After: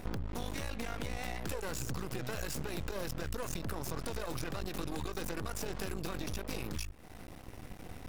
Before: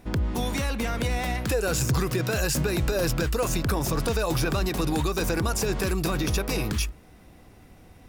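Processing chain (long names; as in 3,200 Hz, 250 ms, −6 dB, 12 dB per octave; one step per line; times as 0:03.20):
downward compressor 8 to 1, threshold −39 dBFS, peak gain reduction 18.5 dB
half-wave rectification
level +6.5 dB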